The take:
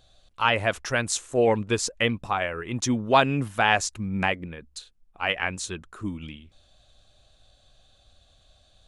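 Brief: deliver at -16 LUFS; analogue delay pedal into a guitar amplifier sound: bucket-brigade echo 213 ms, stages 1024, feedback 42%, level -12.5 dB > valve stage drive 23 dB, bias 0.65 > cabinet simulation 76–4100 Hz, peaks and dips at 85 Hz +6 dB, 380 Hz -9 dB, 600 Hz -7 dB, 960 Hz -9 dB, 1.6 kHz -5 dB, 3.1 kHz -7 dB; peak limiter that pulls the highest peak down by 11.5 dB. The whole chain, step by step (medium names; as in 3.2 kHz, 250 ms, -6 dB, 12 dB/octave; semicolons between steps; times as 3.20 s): peak limiter -16 dBFS; bucket-brigade echo 213 ms, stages 1024, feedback 42%, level -12.5 dB; valve stage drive 23 dB, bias 0.65; cabinet simulation 76–4100 Hz, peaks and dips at 85 Hz +6 dB, 380 Hz -9 dB, 600 Hz -7 dB, 960 Hz -9 dB, 1.6 kHz -5 dB, 3.1 kHz -7 dB; trim +20.5 dB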